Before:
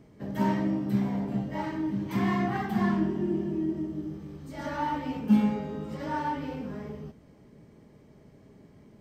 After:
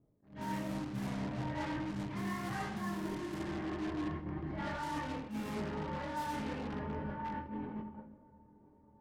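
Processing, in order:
low-pass filter 4,900 Hz
feedback delay with all-pass diffusion 1,044 ms, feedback 53%, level −11.5 dB
multi-voice chorus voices 6, 0.24 Hz, delay 25 ms, depth 1.8 ms
dynamic equaliser 1,500 Hz, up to +5 dB, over −50 dBFS, Q 0.8
in parallel at −7 dB: wrap-around overflow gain 31.5 dB
on the sum: noise gate −39 dBFS, range −19 dB
low-pass that shuts in the quiet parts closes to 910 Hz, open at −25.5 dBFS
reversed playback
downward compressor 6 to 1, threshold −39 dBFS, peak gain reduction 16.5 dB
reversed playback
parametric band 93 Hz +4 dB 0.57 octaves
convolution reverb RT60 1.2 s, pre-delay 6 ms, DRR 9.5 dB
level that may rise only so fast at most 150 dB per second
level +2 dB

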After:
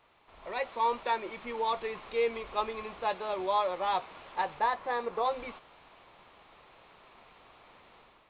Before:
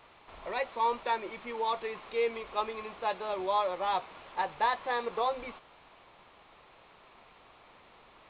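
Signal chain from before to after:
0:01.42–0:03.15: low-shelf EQ 120 Hz +6.5 dB
automatic gain control gain up to 8.5 dB
0:04.59–0:05.25: parametric band 3,500 Hz −6.5 dB 1.6 octaves
level −8 dB

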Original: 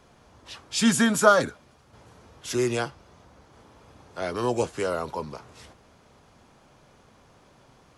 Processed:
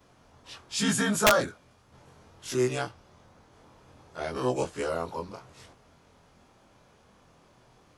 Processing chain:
every overlapping window played backwards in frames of 48 ms
wrap-around overflow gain 11 dB

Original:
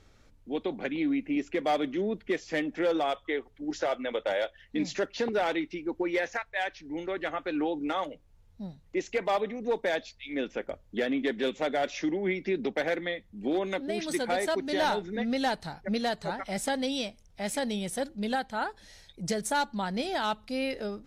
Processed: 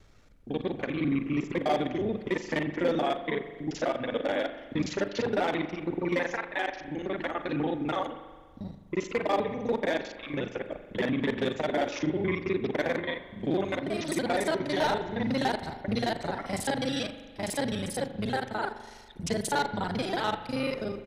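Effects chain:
reversed piece by piece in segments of 36 ms
pitch-shifted copies added −12 semitones −8 dB
spring reverb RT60 1.5 s, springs 40 ms, chirp 50 ms, DRR 10 dB

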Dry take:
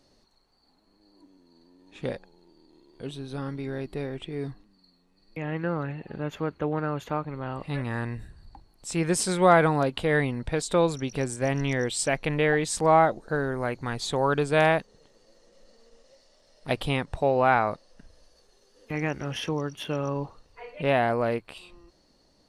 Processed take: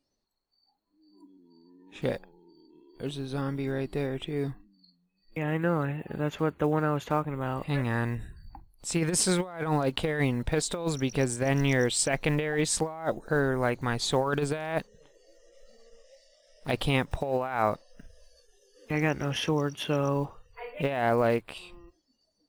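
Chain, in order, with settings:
one scale factor per block 7 bits
noise reduction from a noise print of the clip's start 20 dB
compressor whose output falls as the input rises −25 dBFS, ratio −0.5

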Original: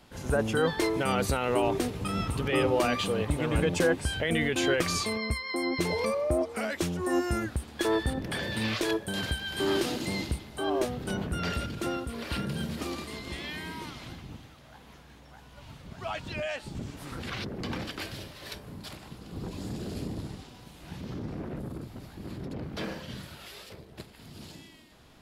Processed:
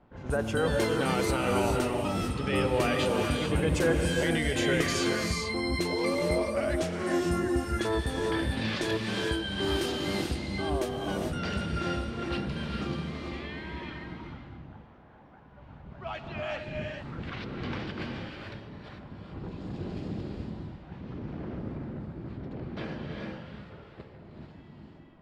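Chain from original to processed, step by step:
low-pass that shuts in the quiet parts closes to 1,200 Hz, open at −23.5 dBFS
reverb whose tail is shaped and stops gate 470 ms rising, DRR 1 dB
level −2.5 dB

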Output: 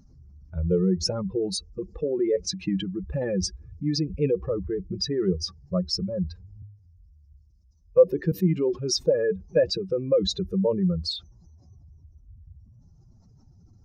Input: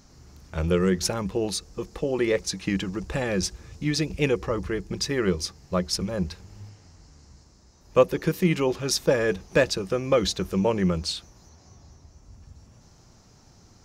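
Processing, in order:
expanding power law on the bin magnitudes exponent 2.2
0:06.62–0:08.32: multiband upward and downward expander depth 40%

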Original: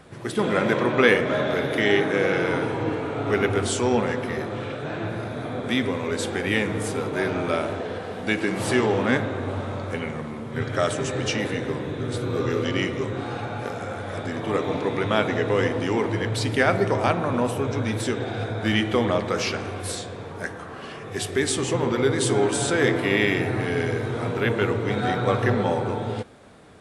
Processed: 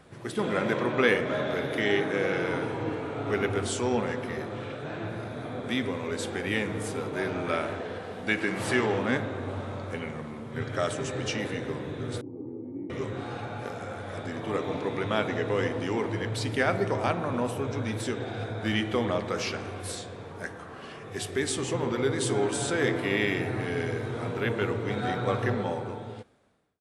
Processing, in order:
fade-out on the ending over 1.41 s
0:07.44–0:08.99: dynamic equaliser 1,800 Hz, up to +5 dB, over −38 dBFS, Q 1.1
0:12.21–0:12.90: formant resonators in series u
level −5.5 dB

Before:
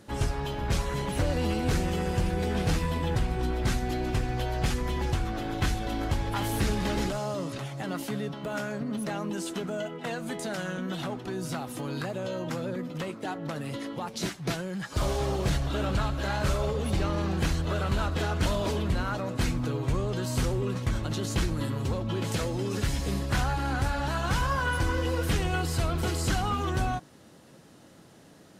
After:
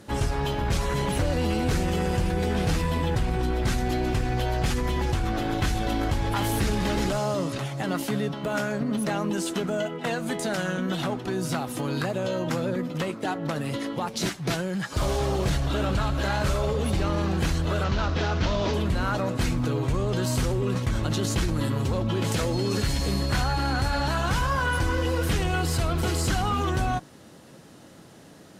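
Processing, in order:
0:17.84–0:18.74: variable-slope delta modulation 32 kbit/s
in parallel at −3 dB: compressor whose output falls as the input rises −31 dBFS
0:22.52–0:24.12: on the sum: steady tone 4,300 Hz −37 dBFS
harmonic generator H 7 −35 dB, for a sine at −13.5 dBFS

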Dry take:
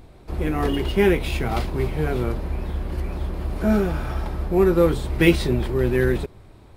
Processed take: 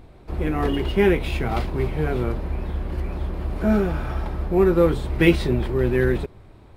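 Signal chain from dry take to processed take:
bass and treble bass 0 dB, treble −6 dB

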